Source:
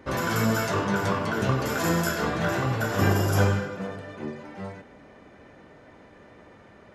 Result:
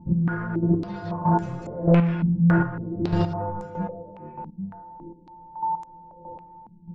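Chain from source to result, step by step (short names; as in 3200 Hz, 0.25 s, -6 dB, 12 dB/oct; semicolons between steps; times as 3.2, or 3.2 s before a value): low-pass opened by the level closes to 570 Hz, open at -21 dBFS; tilt -4 dB/oct; in parallel at -5.5 dB: wavefolder -12 dBFS; on the sum: whine 890 Hz -24 dBFS; metallic resonator 170 Hz, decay 0.27 s, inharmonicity 0.002; overloaded stage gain 21 dB; chopper 1.6 Hz, depth 65%, duty 20%; on a send at -15 dB: reverb RT60 1.6 s, pre-delay 22 ms; on the sum: stepped low-pass 3.6 Hz 200–7200 Hz; gain +5 dB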